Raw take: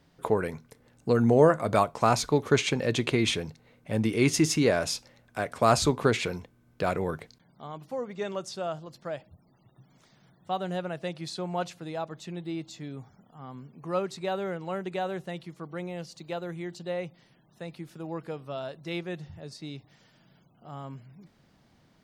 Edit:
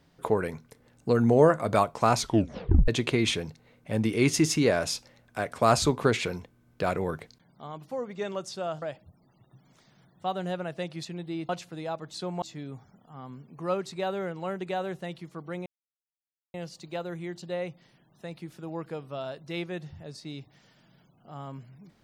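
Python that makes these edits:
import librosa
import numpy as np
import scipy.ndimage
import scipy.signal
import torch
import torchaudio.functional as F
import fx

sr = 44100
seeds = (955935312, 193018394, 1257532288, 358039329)

y = fx.edit(x, sr, fx.tape_stop(start_s=2.2, length_s=0.68),
    fx.cut(start_s=8.82, length_s=0.25),
    fx.swap(start_s=11.3, length_s=0.28, other_s=12.23, other_length_s=0.44),
    fx.insert_silence(at_s=15.91, length_s=0.88), tone=tone)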